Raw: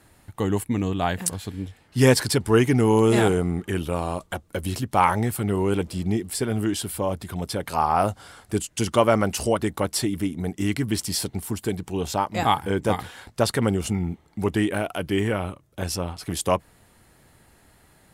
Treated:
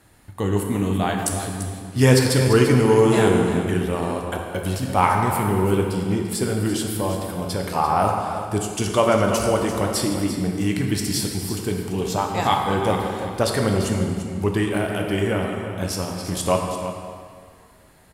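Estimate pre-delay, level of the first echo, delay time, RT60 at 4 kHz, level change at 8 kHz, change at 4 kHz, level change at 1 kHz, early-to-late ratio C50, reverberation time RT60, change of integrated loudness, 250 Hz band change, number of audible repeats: 10 ms, −11.0 dB, 342 ms, 1.5 s, +2.0 dB, +2.0 dB, +2.5 dB, 2.5 dB, 2.0 s, +2.5 dB, +2.5 dB, 1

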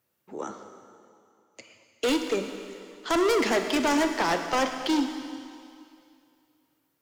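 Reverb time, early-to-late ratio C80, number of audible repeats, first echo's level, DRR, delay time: 2.4 s, 7.5 dB, no echo audible, no echo audible, 6.0 dB, no echo audible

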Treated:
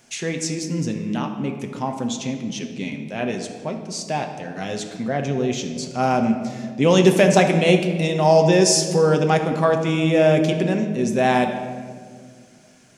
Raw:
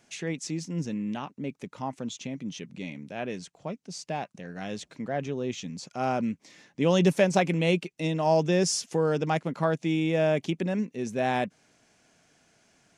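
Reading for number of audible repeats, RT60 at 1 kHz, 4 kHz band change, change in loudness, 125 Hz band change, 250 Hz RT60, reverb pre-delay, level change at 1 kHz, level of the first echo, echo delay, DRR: no echo audible, 1.6 s, +9.5 dB, +8.5 dB, +8.0 dB, 2.7 s, 8 ms, +8.5 dB, no echo audible, no echo audible, 4.0 dB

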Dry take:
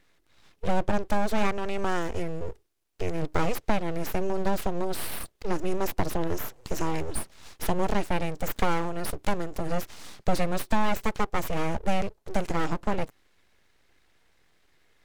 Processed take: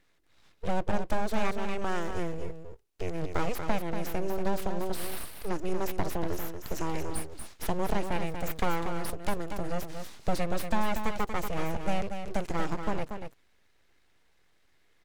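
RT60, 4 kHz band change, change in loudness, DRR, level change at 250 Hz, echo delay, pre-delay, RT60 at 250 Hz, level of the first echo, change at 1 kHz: no reverb audible, −3.5 dB, −3.5 dB, no reverb audible, −3.5 dB, 236 ms, no reverb audible, no reverb audible, −7.5 dB, −3.5 dB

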